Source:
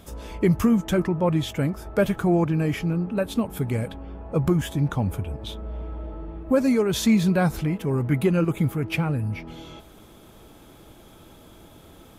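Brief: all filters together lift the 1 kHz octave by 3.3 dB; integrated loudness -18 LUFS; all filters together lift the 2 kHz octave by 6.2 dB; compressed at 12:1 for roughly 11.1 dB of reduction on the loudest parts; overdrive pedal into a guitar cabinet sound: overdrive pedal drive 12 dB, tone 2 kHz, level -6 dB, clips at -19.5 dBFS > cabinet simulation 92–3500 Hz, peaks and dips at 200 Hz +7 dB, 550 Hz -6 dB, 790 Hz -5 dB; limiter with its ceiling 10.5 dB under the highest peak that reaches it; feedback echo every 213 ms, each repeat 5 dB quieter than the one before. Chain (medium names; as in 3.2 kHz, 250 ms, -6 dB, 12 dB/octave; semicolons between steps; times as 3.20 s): peaking EQ 1 kHz +5.5 dB; peaking EQ 2 kHz +6.5 dB; compression 12:1, threshold -25 dBFS; peak limiter -25 dBFS; feedback delay 213 ms, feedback 56%, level -5 dB; overdrive pedal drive 12 dB, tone 2 kHz, level -6 dB, clips at -19.5 dBFS; cabinet simulation 92–3500 Hz, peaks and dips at 200 Hz +7 dB, 550 Hz -6 dB, 790 Hz -5 dB; trim +14.5 dB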